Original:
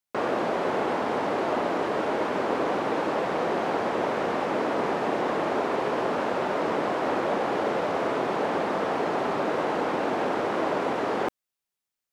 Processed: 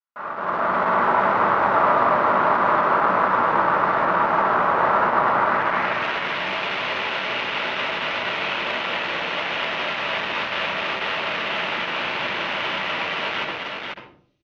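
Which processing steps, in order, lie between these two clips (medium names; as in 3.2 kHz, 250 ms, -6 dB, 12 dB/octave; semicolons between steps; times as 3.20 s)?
octave divider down 1 oct, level 0 dB; bass shelf 110 Hz +8.5 dB; tempo 0.84×; Chebyshev low-pass 6.2 kHz, order 5; band-stop 770 Hz, Q 20; simulated room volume 540 m³, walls furnished, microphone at 7.4 m; saturation -15 dBFS, distortion -9 dB; band-pass sweep 1.2 kHz -> 2.8 kHz, 5.34–6.05 s; level rider gain up to 14 dB; on a send: multi-tap echo 247/490 ms -6/-3.5 dB; on the sum: trim -5 dB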